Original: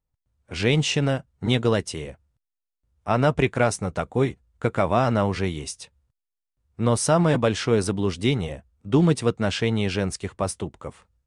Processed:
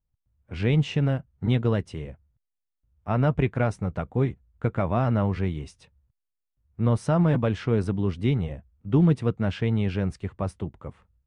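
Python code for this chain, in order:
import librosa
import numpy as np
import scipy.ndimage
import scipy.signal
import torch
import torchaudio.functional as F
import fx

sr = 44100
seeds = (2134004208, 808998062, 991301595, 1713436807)

y = fx.bass_treble(x, sr, bass_db=8, treble_db=-15)
y = y * 10.0 ** (-6.0 / 20.0)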